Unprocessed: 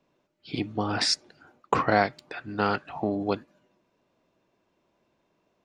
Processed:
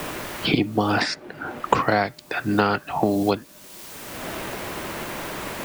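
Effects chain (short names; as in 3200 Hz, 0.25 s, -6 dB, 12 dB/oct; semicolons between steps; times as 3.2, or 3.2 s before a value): in parallel at -11 dB: requantised 8-bit, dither triangular; on the sum: three-band squash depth 100%; gain +4 dB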